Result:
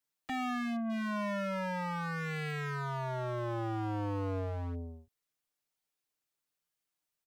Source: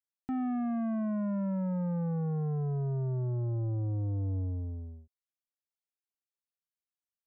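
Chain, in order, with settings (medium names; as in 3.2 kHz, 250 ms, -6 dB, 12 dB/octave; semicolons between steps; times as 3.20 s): comb 6.6 ms, depth 66%; wavefolder -37 dBFS; trim +6 dB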